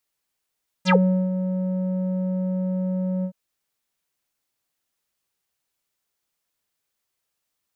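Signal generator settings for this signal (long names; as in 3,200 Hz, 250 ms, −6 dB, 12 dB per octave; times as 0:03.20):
subtractive voice square F#3 12 dB per octave, low-pass 410 Hz, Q 8.5, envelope 4.5 octaves, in 0.11 s, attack 45 ms, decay 0.40 s, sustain −8.5 dB, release 0.08 s, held 2.39 s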